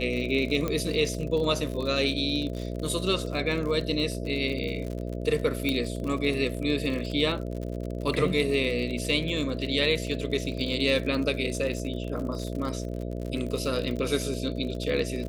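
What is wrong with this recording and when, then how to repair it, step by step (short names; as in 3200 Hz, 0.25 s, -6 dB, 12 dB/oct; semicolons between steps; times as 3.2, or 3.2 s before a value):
buzz 60 Hz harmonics 11 -33 dBFS
crackle 55/s -32 dBFS
0.68 pop -15 dBFS
5.69 pop -13 dBFS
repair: de-click; de-hum 60 Hz, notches 11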